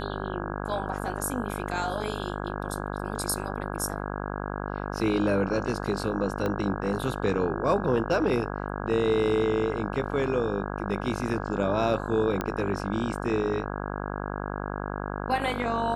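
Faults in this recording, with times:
mains buzz 50 Hz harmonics 33 −33 dBFS
0:06.46: click −17 dBFS
0:12.41: click −15 dBFS

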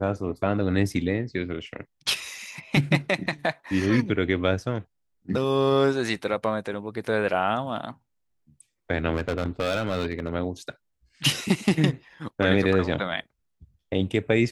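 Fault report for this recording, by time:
0:09.13–0:10.33: clipping −20.5 dBFS

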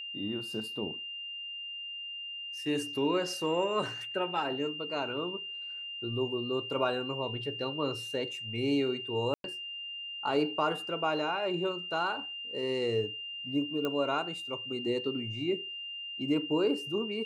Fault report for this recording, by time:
whistle 2,800 Hz −38 dBFS
0:09.34–0:09.44: drop-out 102 ms
0:13.85: click −20 dBFS

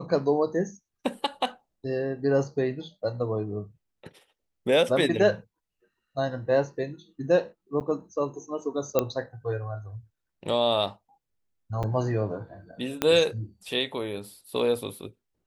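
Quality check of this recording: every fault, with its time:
0:07.80–0:07.81: drop-out 9.1 ms
0:08.99: click −9 dBFS
0:11.83–0:11.84: drop-out 6.3 ms
0:13.02: click −8 dBFS

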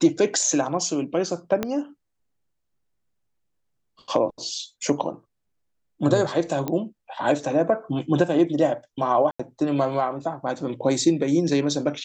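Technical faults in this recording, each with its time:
0:01.63: click −11 dBFS
0:06.68: click −14 dBFS
0:09.31–0:09.39: drop-out 85 ms

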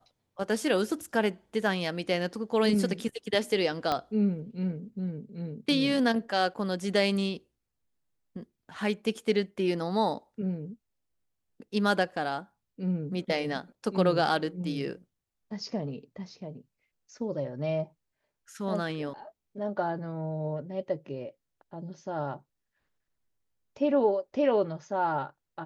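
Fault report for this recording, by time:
0:03.92: click −15 dBFS

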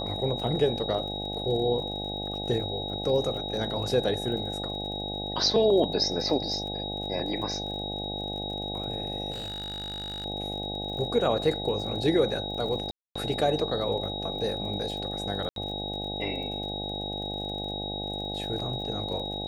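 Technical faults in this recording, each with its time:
mains buzz 50 Hz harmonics 17 −36 dBFS
surface crackle 44 per second −38 dBFS
whistle 3,800 Hz −34 dBFS
0:09.31–0:10.26: clipping −32 dBFS
0:12.91–0:13.15: drop-out 245 ms
0:15.49–0:15.56: drop-out 72 ms

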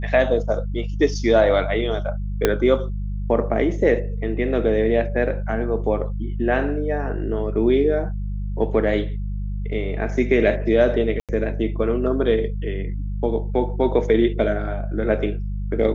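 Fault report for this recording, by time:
mains hum 50 Hz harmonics 4 −26 dBFS
0:02.45: click −3 dBFS
0:11.20–0:11.29: drop-out 87 ms

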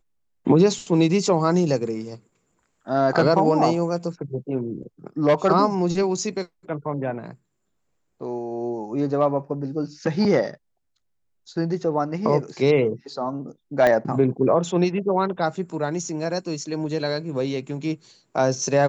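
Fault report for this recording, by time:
0:13.87: click −8 dBFS

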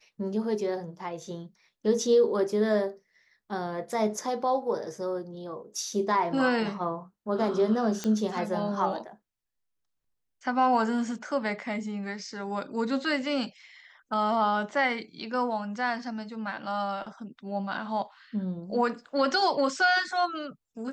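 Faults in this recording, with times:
0:08.04: click −17 dBFS

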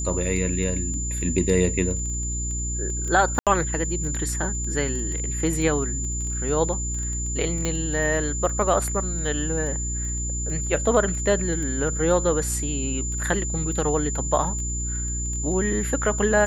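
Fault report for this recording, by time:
surface crackle 10 per second −30 dBFS
mains hum 60 Hz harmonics 6 −29 dBFS
whistle 7,100 Hz −29 dBFS
0:03.39–0:03.47: drop-out 77 ms
0:07.65: click −12 dBFS

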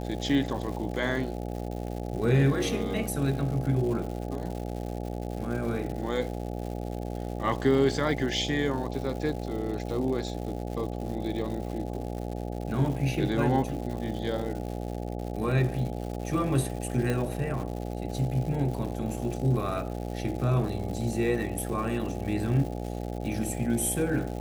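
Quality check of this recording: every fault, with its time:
mains buzz 60 Hz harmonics 14 −34 dBFS
surface crackle 220 per second −36 dBFS
0:17.10: click −16 dBFS

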